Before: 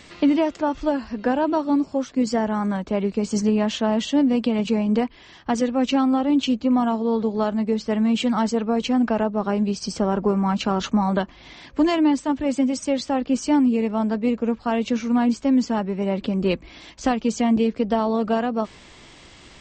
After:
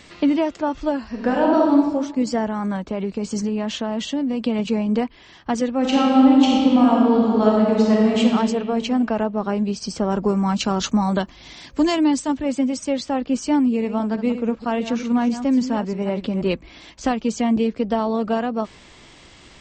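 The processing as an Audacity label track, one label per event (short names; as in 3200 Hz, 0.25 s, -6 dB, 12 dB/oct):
1.080000	1.870000	reverb throw, RT60 1.1 s, DRR -1.5 dB
2.480000	4.430000	compressor, threshold -19 dBFS
5.780000	8.190000	reverb throw, RT60 2.3 s, DRR -3.5 dB
10.100000	12.370000	tone controls bass +2 dB, treble +10 dB
13.680000	16.470000	reverse delay 0.161 s, level -10.5 dB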